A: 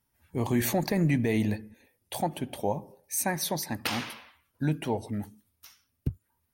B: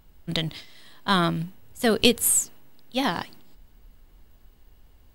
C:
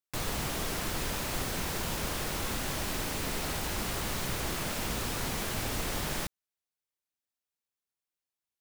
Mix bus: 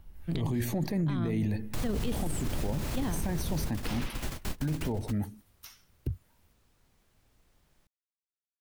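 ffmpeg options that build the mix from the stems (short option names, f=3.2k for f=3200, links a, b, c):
-filter_complex "[0:a]volume=2.5dB[a];[1:a]highshelf=f=4.9k:g=-9,volume=-3.5dB,asplit=2[b][c];[2:a]adelay=1600,volume=0dB[d];[c]apad=whole_len=450198[e];[d][e]sidechaingate=range=-38dB:threshold=-53dB:ratio=16:detection=peak[f];[a][b]amix=inputs=2:normalize=0,alimiter=limit=-18.5dB:level=0:latency=1,volume=0dB[g];[f][g]amix=inputs=2:normalize=0,lowshelf=f=110:g=9.5,acrossover=split=430[h][i];[i]acompressor=threshold=-38dB:ratio=4[j];[h][j]amix=inputs=2:normalize=0,alimiter=limit=-23dB:level=0:latency=1:release=18"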